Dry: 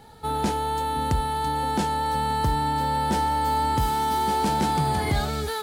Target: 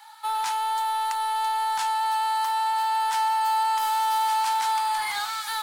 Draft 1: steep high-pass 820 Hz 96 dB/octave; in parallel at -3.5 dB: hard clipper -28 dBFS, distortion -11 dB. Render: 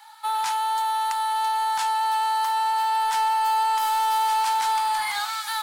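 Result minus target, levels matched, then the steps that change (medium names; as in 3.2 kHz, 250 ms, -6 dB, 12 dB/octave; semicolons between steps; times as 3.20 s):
hard clipper: distortion -4 dB
change: hard clipper -35 dBFS, distortion -7 dB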